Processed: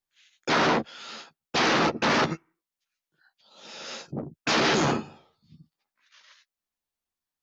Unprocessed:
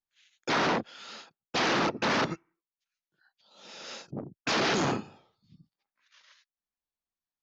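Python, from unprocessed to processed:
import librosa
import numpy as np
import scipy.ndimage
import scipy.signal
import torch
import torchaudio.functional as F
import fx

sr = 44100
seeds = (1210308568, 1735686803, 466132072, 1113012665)

y = fx.doubler(x, sr, ms=13.0, db=-8.5)
y = F.gain(torch.from_numpy(y), 3.5).numpy()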